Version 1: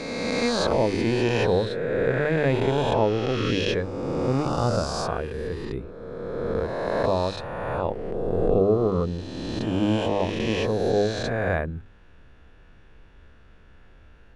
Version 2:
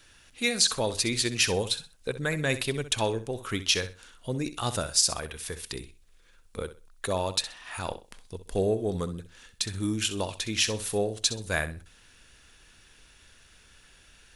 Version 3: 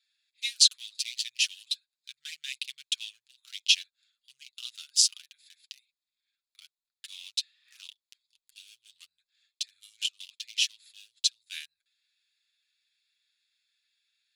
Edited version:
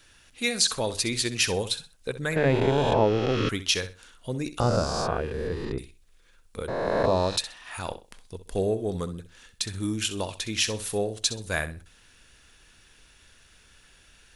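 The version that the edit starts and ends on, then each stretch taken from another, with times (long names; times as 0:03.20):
2
0:02.36–0:03.49: punch in from 1
0:04.60–0:05.78: punch in from 1
0:06.68–0:07.37: punch in from 1
not used: 3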